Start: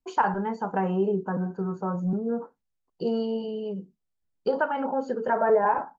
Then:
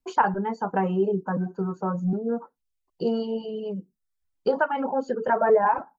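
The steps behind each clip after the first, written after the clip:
reverb reduction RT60 0.61 s
level +2.5 dB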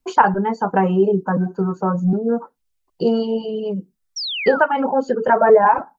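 sound drawn into the spectrogram fall, 0:04.16–0:04.61, 1,200–5,900 Hz −33 dBFS
level +7.5 dB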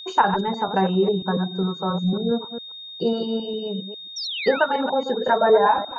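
delay that plays each chunk backwards 136 ms, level −8.5 dB
steady tone 3,700 Hz −31 dBFS
level −4.5 dB

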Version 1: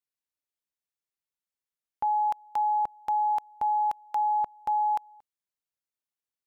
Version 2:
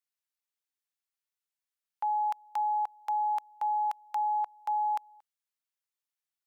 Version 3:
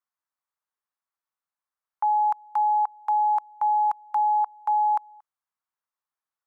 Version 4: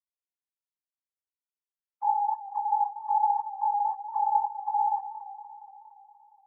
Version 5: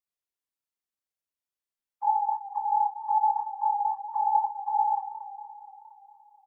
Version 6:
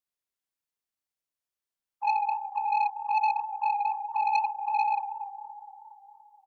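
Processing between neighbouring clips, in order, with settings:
high-pass filter 890 Hz 12 dB per octave
drawn EQ curve 410 Hz 0 dB, 1,100 Hz +14 dB, 2,800 Hz −4 dB; level −3 dB
three sine waves on the formant tracks; multi-voice chorus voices 6, 0.65 Hz, delay 26 ms, depth 4.8 ms; feedback echo with a swinging delay time 234 ms, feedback 64%, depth 74 cents, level −14 dB
double-tracking delay 30 ms −6 dB
single-tap delay 292 ms −13.5 dB; saturating transformer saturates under 1,500 Hz

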